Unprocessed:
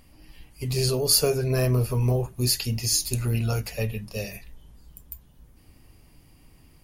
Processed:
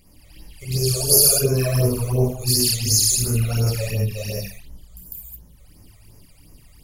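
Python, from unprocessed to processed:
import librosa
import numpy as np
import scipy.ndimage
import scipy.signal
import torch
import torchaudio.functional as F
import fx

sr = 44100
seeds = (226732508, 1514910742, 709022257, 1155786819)

y = fx.high_shelf(x, sr, hz=3100.0, db=7.0)
y = fx.rev_gated(y, sr, seeds[0], gate_ms=240, shape='flat', drr_db=-6.5)
y = fx.phaser_stages(y, sr, stages=12, low_hz=270.0, high_hz=3600.0, hz=2.8, feedback_pct=35)
y = fx.graphic_eq_31(y, sr, hz=(250, 1000, 2000, 4000, 12500), db=(-9, -7, -12, -8, 5), at=(0.78, 1.43))
y = y * 10.0 ** (-3.0 / 20.0)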